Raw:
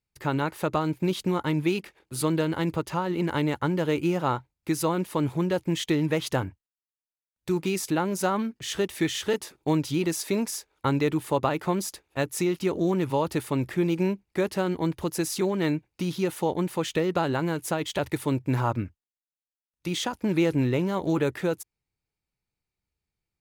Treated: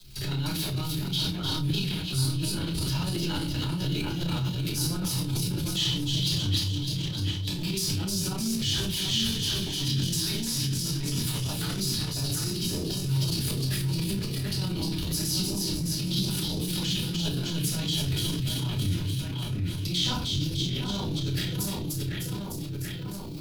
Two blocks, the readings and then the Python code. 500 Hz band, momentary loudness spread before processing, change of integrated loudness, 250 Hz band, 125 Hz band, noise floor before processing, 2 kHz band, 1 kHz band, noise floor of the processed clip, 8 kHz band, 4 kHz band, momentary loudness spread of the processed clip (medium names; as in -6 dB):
-12.5 dB, 5 LU, -1.0 dB, -4.5 dB, +3.0 dB, under -85 dBFS, -5.0 dB, -12.0 dB, -34 dBFS, +5.0 dB, +9.5 dB, 4 LU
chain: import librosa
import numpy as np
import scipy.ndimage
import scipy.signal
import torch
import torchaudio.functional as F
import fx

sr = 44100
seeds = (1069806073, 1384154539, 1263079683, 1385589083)

p1 = fx.law_mismatch(x, sr, coded='mu')
p2 = fx.over_compress(p1, sr, threshold_db=-30.0, ratio=-0.5)
p3 = fx.peak_eq(p2, sr, hz=420.0, db=-2.5, octaves=0.24)
p4 = fx.rotary(p3, sr, hz=6.0)
p5 = fx.graphic_eq(p4, sr, hz=(125, 250, 500, 1000, 2000, 4000, 8000), db=(5, -4, -11, -6, -11, 9, -7))
p6 = p5 + fx.echo_split(p5, sr, split_hz=2400.0, low_ms=734, high_ms=302, feedback_pct=52, wet_db=-5, dry=0)
p7 = fx.room_shoebox(p6, sr, seeds[0], volume_m3=52.0, walls='mixed', distance_m=1.9)
p8 = fx.transient(p7, sr, attack_db=-7, sustain_db=7)
p9 = fx.doubler(p8, sr, ms=31.0, db=-8.5)
p10 = fx.band_squash(p9, sr, depth_pct=70)
y = F.gain(torch.from_numpy(p10), -6.0).numpy()